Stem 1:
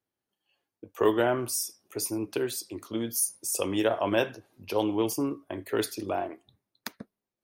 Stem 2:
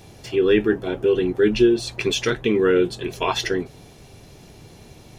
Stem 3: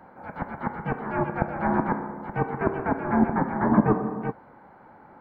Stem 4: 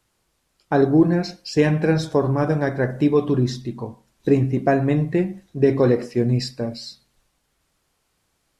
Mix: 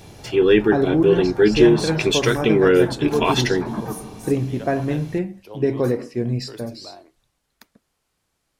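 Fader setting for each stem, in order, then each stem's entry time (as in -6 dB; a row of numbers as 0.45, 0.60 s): -12.0, +2.5, -8.5, -3.5 dB; 0.75, 0.00, 0.00, 0.00 s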